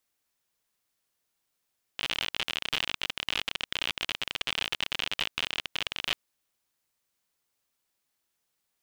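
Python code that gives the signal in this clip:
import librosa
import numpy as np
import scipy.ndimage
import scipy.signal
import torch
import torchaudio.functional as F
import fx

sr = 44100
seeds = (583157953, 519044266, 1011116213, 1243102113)

y = fx.geiger_clicks(sr, seeds[0], length_s=4.15, per_s=55.0, level_db=-13.0)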